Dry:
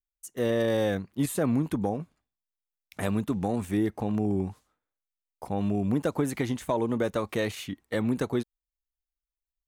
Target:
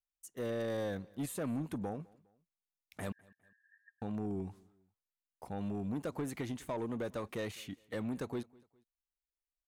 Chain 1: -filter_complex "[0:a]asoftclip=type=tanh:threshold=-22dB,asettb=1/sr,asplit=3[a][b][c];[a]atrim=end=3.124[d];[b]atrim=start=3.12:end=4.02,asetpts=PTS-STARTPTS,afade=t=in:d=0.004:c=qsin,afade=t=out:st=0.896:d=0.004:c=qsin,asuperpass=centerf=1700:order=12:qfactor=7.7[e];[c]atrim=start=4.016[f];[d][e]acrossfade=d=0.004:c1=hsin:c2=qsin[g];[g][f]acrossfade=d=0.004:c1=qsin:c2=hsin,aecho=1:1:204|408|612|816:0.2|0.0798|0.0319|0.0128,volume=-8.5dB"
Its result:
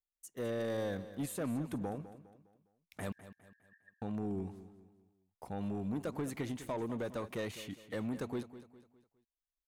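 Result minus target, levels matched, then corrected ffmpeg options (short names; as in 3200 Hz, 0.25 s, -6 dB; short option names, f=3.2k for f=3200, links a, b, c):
echo-to-direct +11 dB
-filter_complex "[0:a]asoftclip=type=tanh:threshold=-22dB,asettb=1/sr,asplit=3[a][b][c];[a]atrim=end=3.124[d];[b]atrim=start=3.12:end=4.02,asetpts=PTS-STARTPTS,afade=t=in:d=0.004:c=qsin,afade=t=out:st=0.896:d=0.004:c=qsin,asuperpass=centerf=1700:order=12:qfactor=7.7[e];[c]atrim=start=4.016[f];[d][e]acrossfade=d=0.004:c1=hsin:c2=qsin[g];[g][f]acrossfade=d=0.004:c1=qsin:c2=hsin,aecho=1:1:204|408:0.0562|0.0225,volume=-8.5dB"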